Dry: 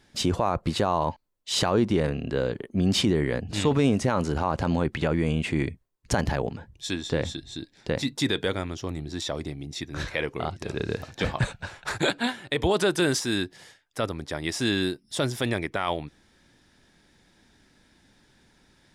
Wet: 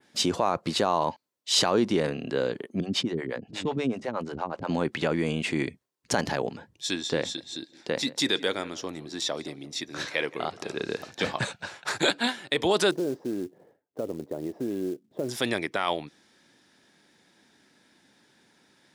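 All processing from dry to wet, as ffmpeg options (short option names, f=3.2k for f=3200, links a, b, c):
-filter_complex "[0:a]asettb=1/sr,asplit=3[a][b][c];[a]atrim=end=2.804[d];[b]atrim=start=2.8:end=4.69,asetpts=PTS-STARTPTS,afade=t=in:d=0.004:c=qsin,afade=t=out:st=1.886:d=0.004:c=qsin,lowpass=f=3k:p=1,acrossover=split=420[e][f];[e]aeval=exprs='val(0)*(1-1/2+1/2*cos(2*PI*8.3*n/s))':c=same[g];[f]aeval=exprs='val(0)*(1-1/2-1/2*cos(2*PI*8.3*n/s))':c=same[h];[g][h]amix=inputs=2:normalize=0[i];[c]atrim=start=4.686[j];[d][i]acrossfade=d=0.004:c1=hsin:c2=qsin[k];[k][j]acrossfade=d=0.004:c1=qsin:c2=hsin,asettb=1/sr,asplit=3[l][m][n];[l]atrim=end=7.204[o];[m]atrim=start=7.2:end=11.07,asetpts=PTS-STARTPTS,afade=t=in:d=0.004:c=qsin,afade=t=out:st=3.866:d=0.004:c=qsin,lowshelf=f=120:g=-9,asplit=2[p][q];[q]adelay=172,lowpass=f=2k:p=1,volume=-18dB,asplit=2[r][s];[s]adelay=172,lowpass=f=2k:p=1,volume=0.38,asplit=2[t][u];[u]adelay=172,lowpass=f=2k:p=1,volume=0.38[v];[p][r][t][v]amix=inputs=4:normalize=0,atrim=end_sample=170667[w];[n]atrim=start=11.066[x];[o][w]acrossfade=d=0.004:c1=hsin:c2=qsin[y];[y][x]acrossfade=d=0.004:c1=qsin:c2=hsin,asettb=1/sr,asplit=3[z][aa][ab];[z]atrim=end=12.914[ac];[aa]atrim=start=12.91:end=15.29,asetpts=PTS-STARTPTS,afade=t=in:d=0.004:c=qsin,afade=t=out:st=2.376:d=0.004:c=qsin,acompressor=threshold=-26dB:ratio=4:attack=3.2:release=140:knee=1:detection=peak,lowpass=f=500:t=q:w=1.6,acrusher=bits=6:mode=log:mix=0:aa=0.000001[ad];[ab]atrim=start=15.286[ae];[ac][ad]acrossfade=d=0.004:c1=hsin:c2=qsin[af];[af][ae]acrossfade=d=0.004:c1=qsin:c2=hsin,highpass=200,adynamicequalizer=threshold=0.00708:dfrequency=5200:dqfactor=0.91:tfrequency=5200:tqfactor=0.91:attack=5:release=100:ratio=0.375:range=2.5:mode=boostabove:tftype=bell"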